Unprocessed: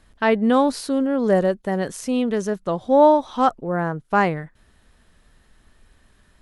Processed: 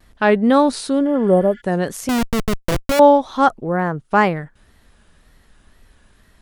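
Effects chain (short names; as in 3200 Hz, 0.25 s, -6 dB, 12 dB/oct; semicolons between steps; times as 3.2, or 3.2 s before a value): 2.09–3 Schmitt trigger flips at -20 dBFS; wow and flutter 110 cents; 1.1–1.58 spectral repair 1400–8200 Hz before; gain +3.5 dB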